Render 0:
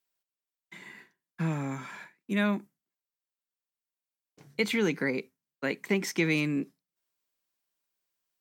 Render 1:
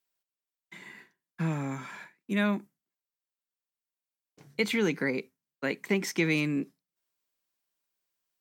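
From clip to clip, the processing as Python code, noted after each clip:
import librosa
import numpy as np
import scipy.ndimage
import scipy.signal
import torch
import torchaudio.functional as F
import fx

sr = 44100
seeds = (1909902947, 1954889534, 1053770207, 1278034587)

y = x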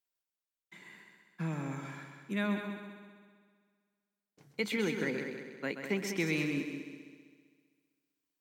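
y = fx.echo_heads(x, sr, ms=65, heads='second and third', feedback_pct=52, wet_db=-8.5)
y = y * librosa.db_to_amplitude(-6.0)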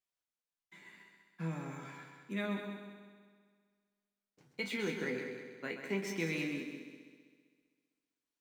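y = scipy.signal.medfilt(x, 3)
y = fx.resonator_bank(y, sr, root=40, chord='minor', decay_s=0.24)
y = y * librosa.db_to_amplitude(7.0)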